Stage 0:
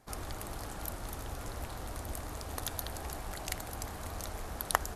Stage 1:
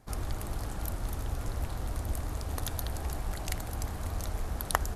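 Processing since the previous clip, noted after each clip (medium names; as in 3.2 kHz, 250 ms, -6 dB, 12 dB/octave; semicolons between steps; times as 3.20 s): bass shelf 210 Hz +9.5 dB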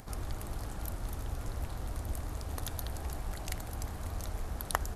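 upward compressor, threshold -37 dBFS; trim -3.5 dB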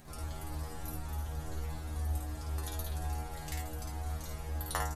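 inharmonic resonator 76 Hz, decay 0.54 s, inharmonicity 0.002; early reflections 53 ms -4 dB, 72 ms -8 dB; trim +8 dB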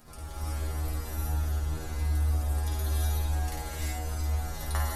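pre-echo 120 ms -15 dB; gated-style reverb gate 400 ms rising, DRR -6 dB; trim -1.5 dB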